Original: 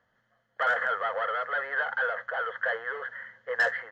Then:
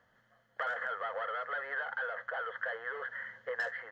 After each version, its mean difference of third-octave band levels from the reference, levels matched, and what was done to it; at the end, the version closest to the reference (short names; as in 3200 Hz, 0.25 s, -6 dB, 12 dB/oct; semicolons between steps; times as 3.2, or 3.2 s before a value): 2.0 dB: compressor 3:1, threshold -40 dBFS, peak gain reduction 14 dB; gain +2.5 dB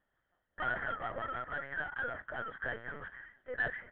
6.5 dB: LPC vocoder at 8 kHz pitch kept; gain -9 dB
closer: first